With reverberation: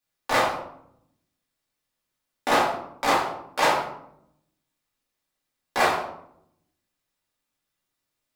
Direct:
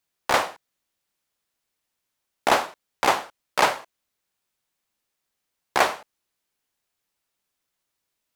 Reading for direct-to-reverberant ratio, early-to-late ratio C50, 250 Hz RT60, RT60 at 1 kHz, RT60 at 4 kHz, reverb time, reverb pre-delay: -6.0 dB, 4.0 dB, 1.1 s, 0.70 s, 0.45 s, 0.75 s, 3 ms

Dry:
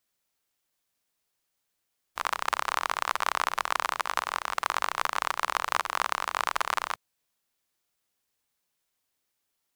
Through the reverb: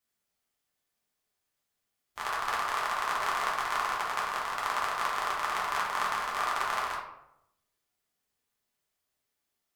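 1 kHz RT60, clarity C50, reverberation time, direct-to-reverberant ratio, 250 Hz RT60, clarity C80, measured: 0.75 s, 3.5 dB, 0.80 s, -5.0 dB, 0.90 s, 7.5 dB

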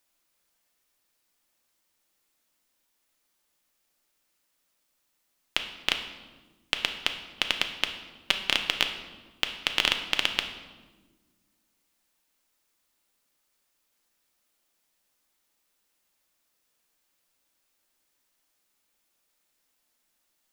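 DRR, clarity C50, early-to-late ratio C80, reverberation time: 5.0 dB, 8.5 dB, 11.0 dB, 1.4 s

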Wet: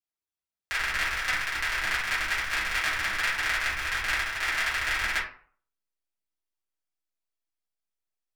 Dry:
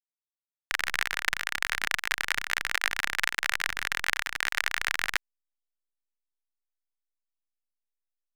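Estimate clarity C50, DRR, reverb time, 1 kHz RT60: 5.5 dB, -9.5 dB, 0.50 s, 0.50 s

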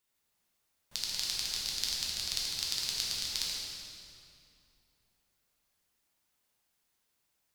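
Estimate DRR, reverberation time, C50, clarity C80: -5.0 dB, 2.7 s, -1.5 dB, 0.0 dB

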